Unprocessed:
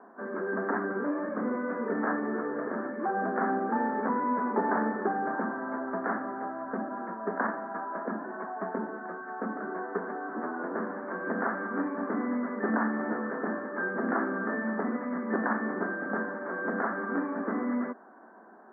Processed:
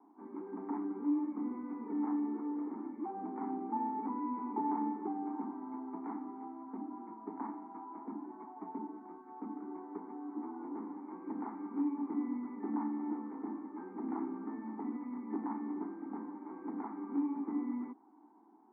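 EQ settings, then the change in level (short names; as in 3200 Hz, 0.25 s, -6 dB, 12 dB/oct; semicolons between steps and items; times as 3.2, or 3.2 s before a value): vowel filter u; +1.5 dB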